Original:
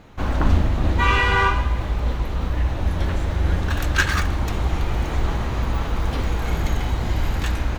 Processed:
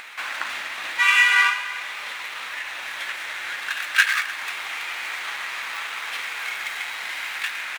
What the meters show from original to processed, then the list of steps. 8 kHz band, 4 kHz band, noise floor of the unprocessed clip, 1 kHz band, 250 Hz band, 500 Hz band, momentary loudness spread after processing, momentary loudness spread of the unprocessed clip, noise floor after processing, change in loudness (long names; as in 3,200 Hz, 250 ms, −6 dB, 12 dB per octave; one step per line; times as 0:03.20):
+3.0 dB, +4.5 dB, −27 dBFS, −4.5 dB, below −25 dB, −17.0 dB, 14 LU, 7 LU, −34 dBFS, −1.0 dB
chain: running median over 9 samples
high-pass with resonance 2,100 Hz, resonance Q 1.6
notch filter 3,000 Hz, Q 28
single-tap delay 298 ms −18.5 dB
in parallel at +1 dB: upward compression, threshold −26 dBFS
on the sum: level −2 dB